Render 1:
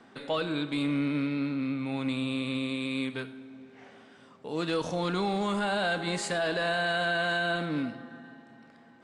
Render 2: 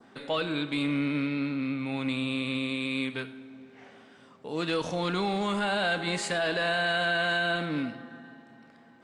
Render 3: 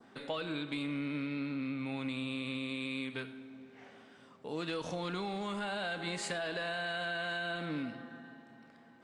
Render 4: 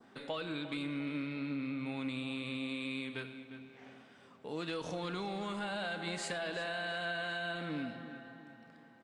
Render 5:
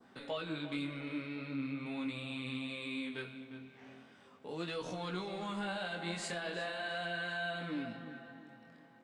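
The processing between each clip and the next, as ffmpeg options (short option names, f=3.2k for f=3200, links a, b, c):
-af "adynamicequalizer=threshold=0.00501:dfrequency=2500:dqfactor=1.1:tfrequency=2500:tqfactor=1.1:attack=5:release=100:ratio=0.375:range=2:mode=boostabove:tftype=bell"
-af "acompressor=threshold=-30dB:ratio=6,volume=-3.5dB"
-filter_complex "[0:a]asplit=2[a][b];[b]adelay=353,lowpass=f=4.1k:p=1,volume=-12dB,asplit=2[c][d];[d]adelay=353,lowpass=f=4.1k:p=1,volume=0.44,asplit=2[e][f];[f]adelay=353,lowpass=f=4.1k:p=1,volume=0.44,asplit=2[g][h];[h]adelay=353,lowpass=f=4.1k:p=1,volume=0.44[i];[a][c][e][g][i]amix=inputs=5:normalize=0,volume=-1.5dB"
-af "flanger=delay=16:depth=7.6:speed=0.4,volume=2dB"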